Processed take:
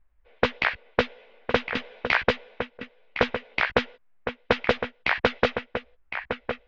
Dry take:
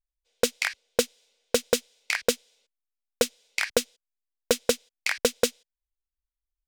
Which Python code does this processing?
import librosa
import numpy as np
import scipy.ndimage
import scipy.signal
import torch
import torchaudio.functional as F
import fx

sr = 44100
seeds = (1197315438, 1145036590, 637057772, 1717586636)

y = scipy.signal.sosfilt(scipy.signal.cheby2(4, 70, 8300.0, 'lowpass', fs=sr, output='sos'), x)
y = fx.over_compress(y, sr, threshold_db=-29.0, ratio=-0.5, at=(1.69, 2.27))
y = fx.chorus_voices(y, sr, voices=6, hz=0.38, base_ms=15, depth_ms=1.1, mix_pct=35)
y = y + 10.0 ** (-16.0 / 20.0) * np.pad(y, (int(1060 * sr / 1000.0), 0))[:len(y)]
y = fx.spectral_comp(y, sr, ratio=2.0)
y = y * 10.0 ** (8.0 / 20.0)